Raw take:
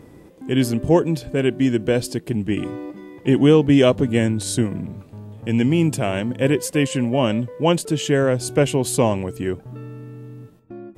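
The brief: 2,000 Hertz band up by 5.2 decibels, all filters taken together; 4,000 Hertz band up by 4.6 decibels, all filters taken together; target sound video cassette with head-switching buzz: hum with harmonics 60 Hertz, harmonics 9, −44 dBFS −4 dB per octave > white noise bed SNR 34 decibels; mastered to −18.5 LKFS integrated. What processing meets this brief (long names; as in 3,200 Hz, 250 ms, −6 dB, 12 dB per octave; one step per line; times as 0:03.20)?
parametric band 2,000 Hz +5.5 dB
parametric band 4,000 Hz +4 dB
hum with harmonics 60 Hz, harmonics 9, −44 dBFS −4 dB per octave
white noise bed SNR 34 dB
level +0.5 dB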